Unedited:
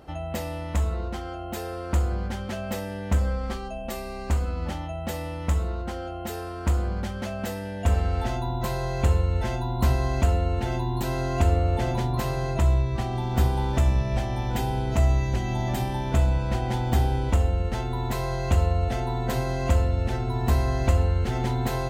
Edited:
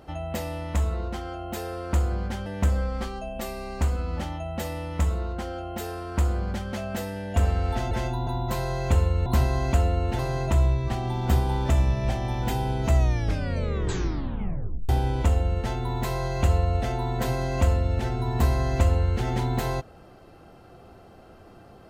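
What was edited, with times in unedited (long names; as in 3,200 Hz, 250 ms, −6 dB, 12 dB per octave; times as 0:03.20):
0:02.46–0:02.95: remove
0:09.39–0:09.75: move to 0:08.40
0:10.68–0:12.27: remove
0:15.04: tape stop 1.93 s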